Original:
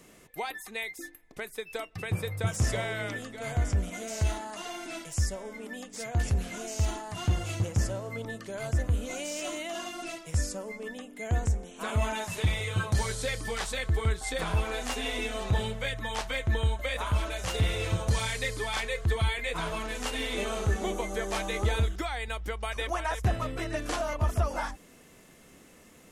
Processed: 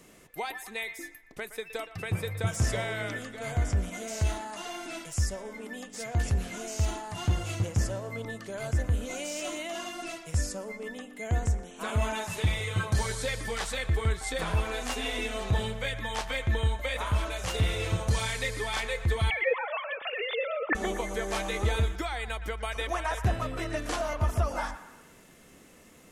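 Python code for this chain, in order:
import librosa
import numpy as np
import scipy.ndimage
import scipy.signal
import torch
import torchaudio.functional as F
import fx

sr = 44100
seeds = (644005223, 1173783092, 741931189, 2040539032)

p1 = fx.sine_speech(x, sr, at=(19.3, 20.75))
y = p1 + fx.echo_banded(p1, sr, ms=118, feedback_pct=54, hz=1400.0, wet_db=-11.5, dry=0)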